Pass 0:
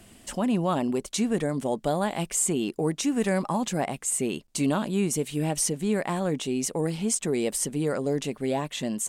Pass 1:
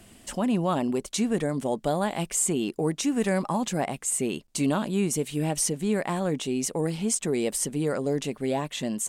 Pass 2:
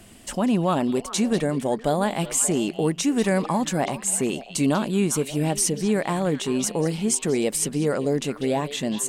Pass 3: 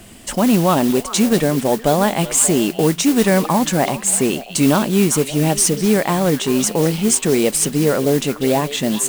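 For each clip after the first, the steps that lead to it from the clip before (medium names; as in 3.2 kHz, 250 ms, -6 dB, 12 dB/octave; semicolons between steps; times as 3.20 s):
no audible change
repeats whose band climbs or falls 194 ms, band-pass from 3.6 kHz, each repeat -1.4 oct, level -7.5 dB; trim +3.5 dB
modulation noise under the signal 15 dB; trim +7 dB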